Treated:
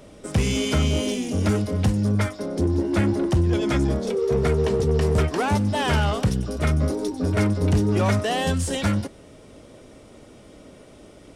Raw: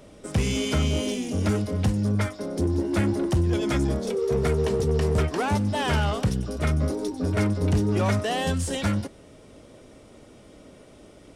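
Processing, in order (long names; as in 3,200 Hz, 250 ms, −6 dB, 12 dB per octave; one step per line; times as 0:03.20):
0:02.43–0:05.01: high-shelf EQ 8,800 Hz −7.5 dB
level +2.5 dB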